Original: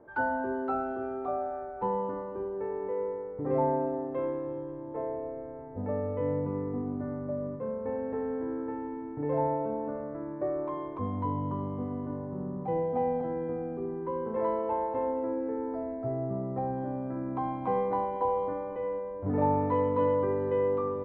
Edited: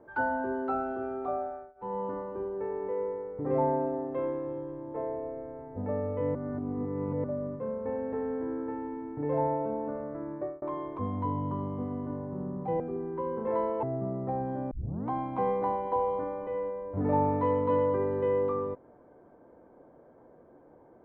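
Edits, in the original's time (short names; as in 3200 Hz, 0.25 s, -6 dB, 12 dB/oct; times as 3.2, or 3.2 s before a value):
1.28–2.21 dip -23 dB, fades 0.46 s equal-power
6.35–7.24 reverse
10.36–10.62 fade out
12.8–13.69 cut
14.72–16.12 cut
17 tape start 0.39 s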